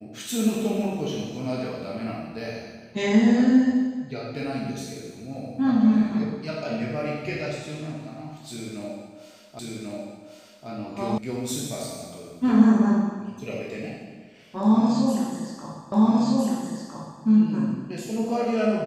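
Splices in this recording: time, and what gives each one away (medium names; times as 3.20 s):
9.59 s: repeat of the last 1.09 s
11.18 s: sound stops dead
15.92 s: repeat of the last 1.31 s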